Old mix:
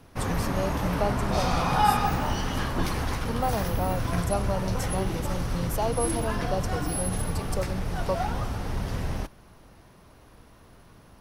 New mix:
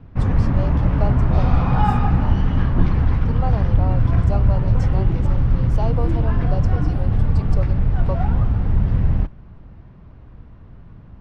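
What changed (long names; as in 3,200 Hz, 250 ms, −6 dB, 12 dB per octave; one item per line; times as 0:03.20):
background: add bass and treble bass +14 dB, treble −13 dB
master: add high-frequency loss of the air 140 metres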